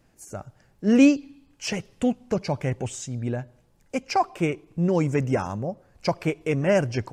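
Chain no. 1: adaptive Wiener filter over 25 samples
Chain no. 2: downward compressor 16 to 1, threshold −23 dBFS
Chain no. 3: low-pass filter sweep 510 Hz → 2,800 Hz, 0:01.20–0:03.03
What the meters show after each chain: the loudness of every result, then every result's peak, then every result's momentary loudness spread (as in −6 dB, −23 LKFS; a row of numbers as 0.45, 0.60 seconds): −25.5, −31.0, −23.5 LKFS; −5.5, −14.0, −4.5 dBFS; 15, 10, 17 LU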